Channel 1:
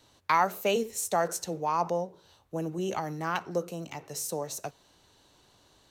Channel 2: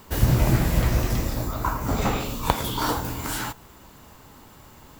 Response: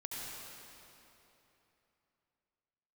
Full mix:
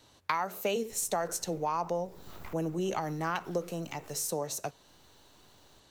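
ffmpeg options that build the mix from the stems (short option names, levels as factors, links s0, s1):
-filter_complex "[0:a]acompressor=threshold=0.0398:ratio=6,volume=1.12,asplit=2[s0][s1];[1:a]acompressor=threshold=0.0708:ratio=6,aeval=exprs='abs(val(0))':c=same,adelay=800,volume=0.168[s2];[s1]apad=whole_len=255717[s3];[s2][s3]sidechaincompress=threshold=0.00398:ratio=4:attack=6.5:release=222[s4];[s0][s4]amix=inputs=2:normalize=0"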